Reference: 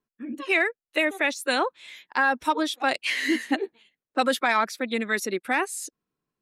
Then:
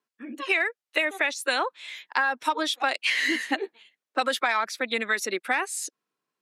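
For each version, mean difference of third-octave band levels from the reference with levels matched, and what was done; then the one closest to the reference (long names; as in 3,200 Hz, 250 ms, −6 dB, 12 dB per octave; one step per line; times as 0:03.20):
3.0 dB: meter weighting curve A
downward compressor, threshold −24 dBFS, peak gain reduction 7.5 dB
level +3.5 dB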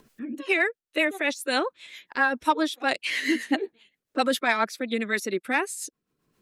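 1.5 dB: upward compression, threshold −37 dBFS
rotating-speaker cabinet horn 7.5 Hz
level +2 dB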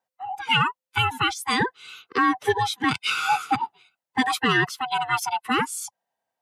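9.5 dB: neighbouring bands swapped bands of 500 Hz
high-pass filter 110 Hz 24 dB per octave
level +2 dB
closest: second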